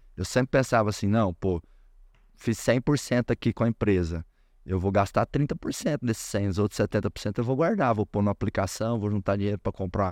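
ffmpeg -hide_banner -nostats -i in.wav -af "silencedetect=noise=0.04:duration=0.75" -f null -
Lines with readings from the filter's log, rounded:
silence_start: 1.58
silence_end: 2.47 | silence_duration: 0.89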